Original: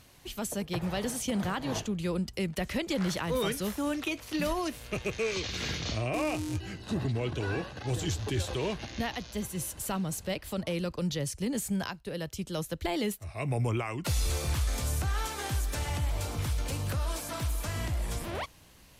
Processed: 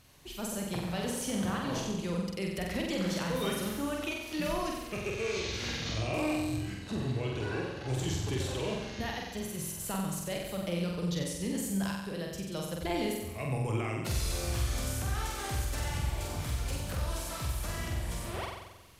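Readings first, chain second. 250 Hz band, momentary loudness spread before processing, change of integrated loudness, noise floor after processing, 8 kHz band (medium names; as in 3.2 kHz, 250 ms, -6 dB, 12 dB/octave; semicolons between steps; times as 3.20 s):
-1.0 dB, 5 LU, -1.5 dB, -43 dBFS, -1.5 dB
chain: flutter echo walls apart 7.9 m, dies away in 1 s; trim -4.5 dB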